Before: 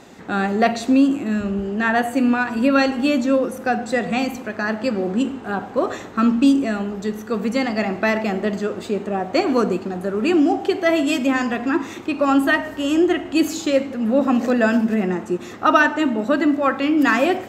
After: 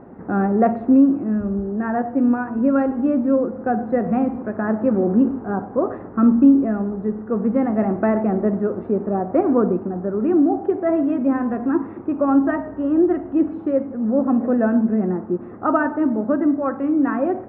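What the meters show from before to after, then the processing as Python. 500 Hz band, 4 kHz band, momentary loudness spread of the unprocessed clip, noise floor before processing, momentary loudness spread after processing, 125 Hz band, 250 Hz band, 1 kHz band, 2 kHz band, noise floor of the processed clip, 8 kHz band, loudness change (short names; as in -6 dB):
0.0 dB, under -30 dB, 8 LU, -36 dBFS, 6 LU, +2.5 dB, +1.5 dB, -3.0 dB, -11.5 dB, -36 dBFS, under -40 dB, 0.0 dB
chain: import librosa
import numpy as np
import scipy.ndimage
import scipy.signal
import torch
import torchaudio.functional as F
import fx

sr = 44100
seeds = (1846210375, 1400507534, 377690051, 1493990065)

y = scipy.signal.sosfilt(scipy.signal.butter(4, 1500.0, 'lowpass', fs=sr, output='sos'), x)
y = fx.tilt_shelf(y, sr, db=5.0, hz=860.0)
y = fx.rider(y, sr, range_db=10, speed_s=2.0)
y = y * 10.0 ** (-3.5 / 20.0)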